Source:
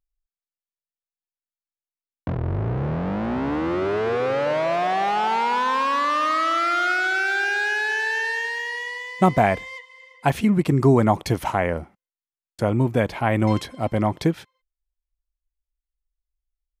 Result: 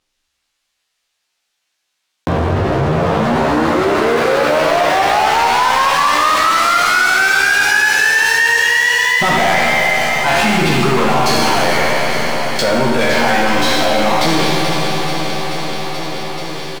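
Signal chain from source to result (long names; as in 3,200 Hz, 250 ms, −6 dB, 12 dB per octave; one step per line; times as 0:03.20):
peak hold with a decay on every bin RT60 0.86 s
resonant band-pass 4,000 Hz, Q 0.76
spectral tilt −2.5 dB per octave
in parallel at −2 dB: brickwall limiter −23.5 dBFS, peak gain reduction 10 dB
on the sum: leveller curve on the samples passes 5
double-tracking delay 13 ms −2.5 dB
on a send: repeating echo 433 ms, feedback 53%, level −13.5 dB
on the sum: four-comb reverb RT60 2.5 s, combs from 30 ms, DRR 1 dB
envelope flattener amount 70%
level −6 dB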